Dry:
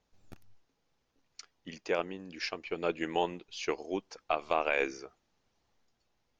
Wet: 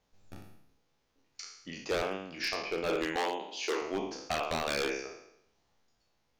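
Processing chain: spectral trails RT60 0.76 s; notches 60/120/180/240/300/360/420 Hz; wavefolder -24 dBFS; 3.16–3.82 HPF 250 Hz 24 dB/oct

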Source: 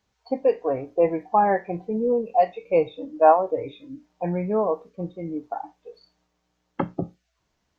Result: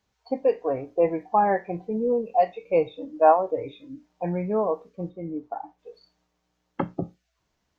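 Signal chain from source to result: 5.09–5.78 high shelf 2200 Hz -> 2700 Hz -10.5 dB; gain -1.5 dB

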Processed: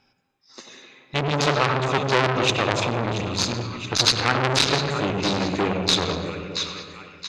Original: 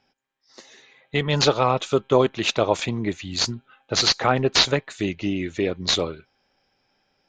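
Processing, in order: comb 0.8 ms, depth 34%; split-band echo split 910 Hz, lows 0.259 s, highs 0.677 s, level -10.5 dB; on a send at -5 dB: reverb RT60 0.85 s, pre-delay 85 ms; on the sum: core saturation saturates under 3100 Hz; gain +3.5 dB

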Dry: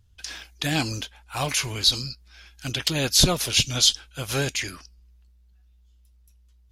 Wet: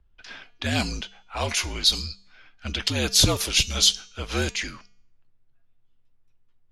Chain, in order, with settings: low-pass opened by the level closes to 2000 Hz, open at -18.5 dBFS; de-hum 249.1 Hz, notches 33; frequency shift -53 Hz

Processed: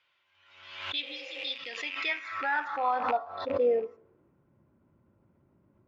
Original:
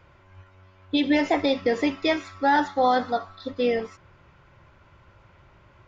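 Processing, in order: rattling part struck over -38 dBFS, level -24 dBFS; spectral repair 1.05–1.49, 330–3100 Hz after; in parallel at +0.5 dB: vocal rider within 4 dB 0.5 s; on the sum: band-pass sweep 3300 Hz -> 240 Hz, 1.69–4.48; on a send at -20 dB: reverb RT60 0.65 s, pre-delay 21 ms; on the sum: backwards sustainer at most 61 dB/s; gain -7.5 dB

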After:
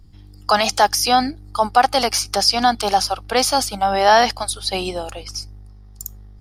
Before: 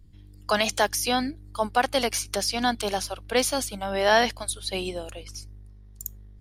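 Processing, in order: in parallel at -1 dB: limiter -19.5 dBFS, peak gain reduction 11.5 dB; on the sum: thirty-one-band EQ 800 Hz +11 dB, 1250 Hz +8 dB, 5000 Hz +10 dB

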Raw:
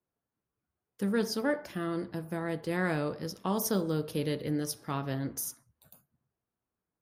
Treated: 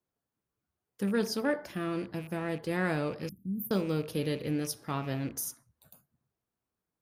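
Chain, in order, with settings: rattling part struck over -44 dBFS, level -40 dBFS; 3.29–3.71 inverse Chebyshev band-stop 720–5700 Hz, stop band 60 dB

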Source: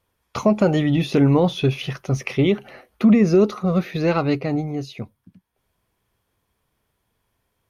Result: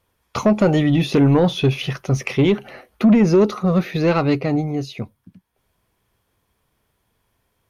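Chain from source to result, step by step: soft clip -10.5 dBFS, distortion -18 dB; gain +3.5 dB

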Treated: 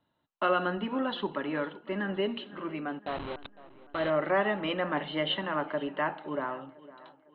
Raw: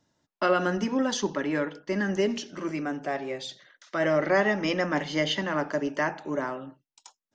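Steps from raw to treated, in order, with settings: 2.99–4.1 level-crossing sampler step -27 dBFS; rippled Chebyshev low-pass 4100 Hz, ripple 6 dB; tape echo 0.507 s, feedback 50%, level -18 dB, low-pass 2800 Hz

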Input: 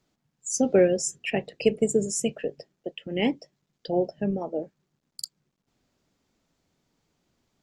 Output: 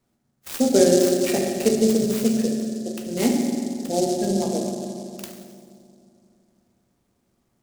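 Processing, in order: air absorption 53 m; reverb RT60 2.6 s, pre-delay 4 ms, DRR -1 dB; noise-modulated delay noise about 6000 Hz, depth 0.077 ms

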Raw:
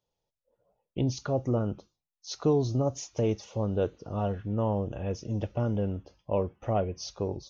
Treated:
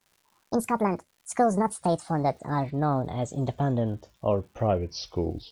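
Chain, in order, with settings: speed glide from 190% -> 82%; crackle 260/s -54 dBFS; gain +3 dB

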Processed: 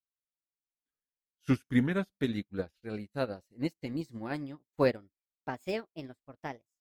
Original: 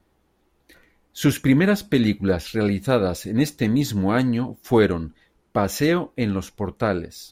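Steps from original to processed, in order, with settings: speed glide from 77% -> 138%; upward expander 2.5:1, over -40 dBFS; gain -7 dB

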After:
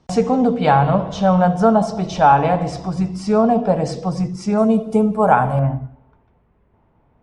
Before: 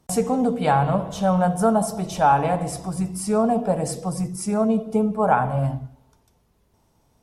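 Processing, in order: LPF 5700 Hz 24 dB/oct, from 4.58 s 10000 Hz, from 5.59 s 2300 Hz; gain +5 dB

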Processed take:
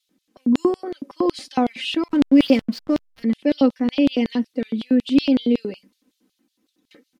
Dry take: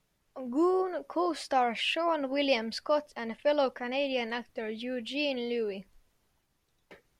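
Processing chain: resonant low shelf 460 Hz +8.5 dB, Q 1.5; comb 3.9 ms, depth 85%; LFO high-pass square 5.4 Hz 260–3700 Hz; 2.08–3.23 backlash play -34 dBFS

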